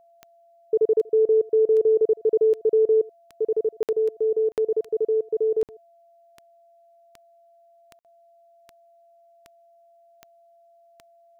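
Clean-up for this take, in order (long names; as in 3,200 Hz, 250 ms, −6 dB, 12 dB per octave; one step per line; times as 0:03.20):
click removal
notch filter 680 Hz, Q 30
repair the gap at 0:03.83/0:04.52/0:05.63/0:07.99, 58 ms
echo removal 80 ms −23 dB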